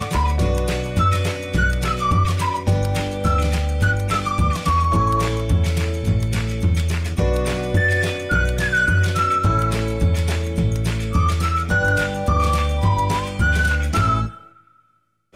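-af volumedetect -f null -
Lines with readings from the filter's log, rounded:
mean_volume: -19.1 dB
max_volume: -9.3 dB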